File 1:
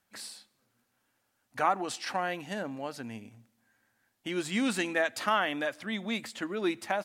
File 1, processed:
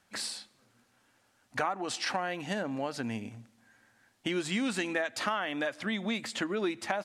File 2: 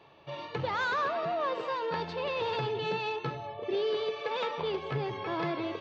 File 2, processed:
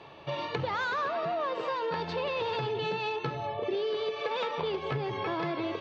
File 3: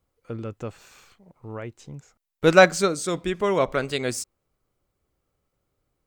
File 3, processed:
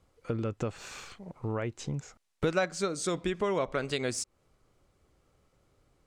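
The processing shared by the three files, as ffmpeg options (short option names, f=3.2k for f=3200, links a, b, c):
-af "lowpass=9.3k,acompressor=threshold=-38dB:ratio=4,volume=8dB"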